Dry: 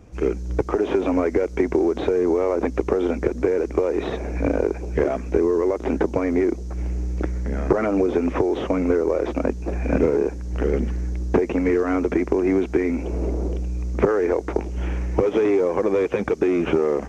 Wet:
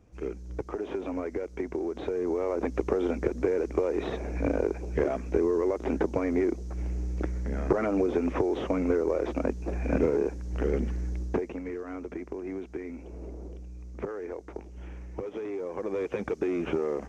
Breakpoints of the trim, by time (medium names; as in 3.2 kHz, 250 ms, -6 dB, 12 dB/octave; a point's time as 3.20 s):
1.78 s -12.5 dB
2.80 s -6 dB
11.19 s -6 dB
11.64 s -16.5 dB
15.48 s -16.5 dB
16.13 s -9 dB